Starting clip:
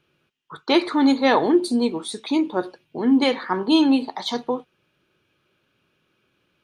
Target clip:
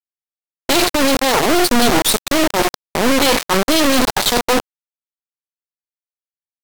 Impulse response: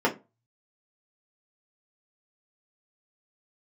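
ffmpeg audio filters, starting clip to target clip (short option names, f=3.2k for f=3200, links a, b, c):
-af "equalizer=f=1.4k:t=o:w=1:g=-14.5,areverse,acompressor=threshold=-27dB:ratio=8,areverse,acrusher=bits=3:dc=4:mix=0:aa=0.000001,apsyclip=35dB,volume=-7.5dB"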